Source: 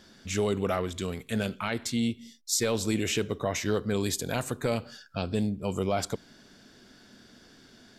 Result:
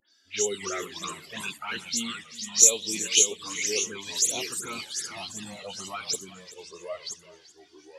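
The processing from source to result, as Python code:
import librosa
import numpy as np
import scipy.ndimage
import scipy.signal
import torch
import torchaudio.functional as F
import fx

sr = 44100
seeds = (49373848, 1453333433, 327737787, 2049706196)

p1 = fx.spec_delay(x, sr, highs='late', ms=111)
p2 = fx.highpass(p1, sr, hz=1100.0, slope=6)
p3 = fx.high_shelf(p2, sr, hz=3200.0, db=10.5)
p4 = fx.rider(p3, sr, range_db=4, speed_s=2.0)
p5 = p3 + (p4 * 10.0 ** (-2.5 / 20.0))
p6 = fx.mod_noise(p5, sr, seeds[0], snr_db=28)
p7 = fx.echo_pitch(p6, sr, ms=223, semitones=-2, count=3, db_per_echo=-6.0)
p8 = fx.env_flanger(p7, sr, rest_ms=3.5, full_db=-18.5)
p9 = p8 + 10.0 ** (-12.5 / 20.0) * np.pad(p8, (int(383 * sr / 1000.0), 0))[:len(p8)]
p10 = fx.spectral_expand(p9, sr, expansion=1.5)
y = p10 * 10.0 ** (2.5 / 20.0)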